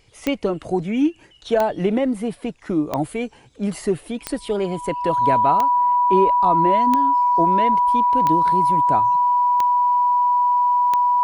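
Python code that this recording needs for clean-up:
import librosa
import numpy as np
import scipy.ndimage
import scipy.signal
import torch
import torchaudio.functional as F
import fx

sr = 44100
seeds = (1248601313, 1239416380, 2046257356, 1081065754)

y = fx.fix_declick_ar(x, sr, threshold=10.0)
y = fx.notch(y, sr, hz=980.0, q=30.0)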